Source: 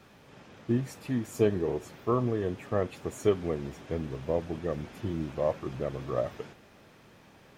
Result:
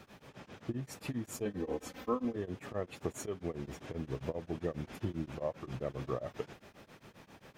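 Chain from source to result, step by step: compressor 6:1, threshold -33 dBFS, peak gain reduction 13.5 dB; 1.45–2.36 comb 3.9 ms, depth 98%; beating tremolo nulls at 7.5 Hz; gain +2.5 dB

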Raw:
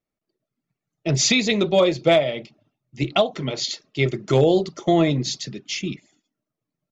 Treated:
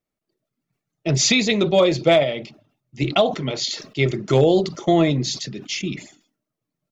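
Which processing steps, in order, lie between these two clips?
sustainer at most 120 dB/s; gain +1 dB

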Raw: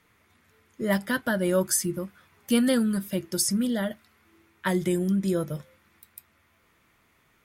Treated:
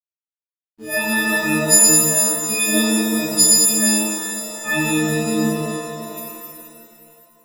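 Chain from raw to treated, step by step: frequency quantiser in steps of 6 st; backlash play -36 dBFS; shimmer reverb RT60 2.7 s, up +7 st, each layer -8 dB, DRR -10 dB; gain -6.5 dB

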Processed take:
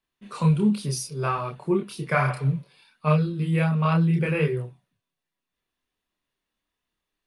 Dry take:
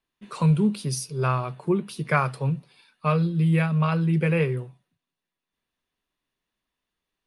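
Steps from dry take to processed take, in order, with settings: spectral repair 2.2–2.59, 500–3700 Hz both; chorus voices 2, 0.65 Hz, delay 28 ms, depth 2.1 ms; gain +3 dB

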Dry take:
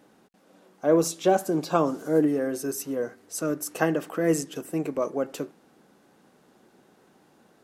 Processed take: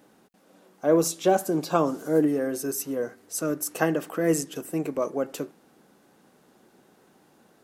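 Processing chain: high shelf 10000 Hz +6.5 dB

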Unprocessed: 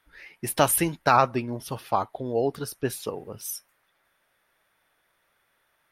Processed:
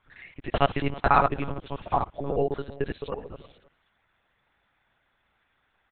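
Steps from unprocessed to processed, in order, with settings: local time reversal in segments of 55 ms; speakerphone echo 0.32 s, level -18 dB; monotone LPC vocoder at 8 kHz 140 Hz

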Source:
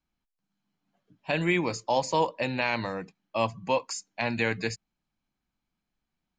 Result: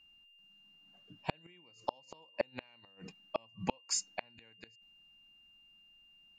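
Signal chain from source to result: flipped gate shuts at -21 dBFS, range -41 dB; whine 2800 Hz -64 dBFS; gain +3.5 dB

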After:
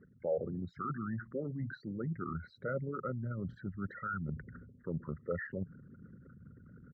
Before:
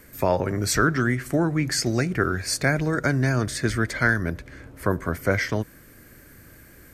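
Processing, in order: formant sharpening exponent 3; reverse; compressor 6:1, threshold -34 dBFS, peak gain reduction 17.5 dB; reverse; pitch shift -2 st; speaker cabinet 130–2000 Hz, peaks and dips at 170 Hz +6 dB, 310 Hz -10 dB, 550 Hz +6 dB, 1000 Hz -4 dB, 1700 Hz -5 dB

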